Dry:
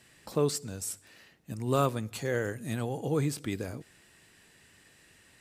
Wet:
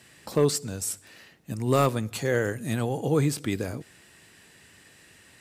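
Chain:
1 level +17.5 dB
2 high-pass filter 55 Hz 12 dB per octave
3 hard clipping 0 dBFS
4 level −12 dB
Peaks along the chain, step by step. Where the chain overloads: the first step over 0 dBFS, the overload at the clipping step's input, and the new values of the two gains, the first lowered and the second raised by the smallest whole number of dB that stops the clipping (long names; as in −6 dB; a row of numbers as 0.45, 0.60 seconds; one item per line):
+5.0, +4.5, 0.0, −12.0 dBFS
step 1, 4.5 dB
step 1 +12.5 dB, step 4 −7 dB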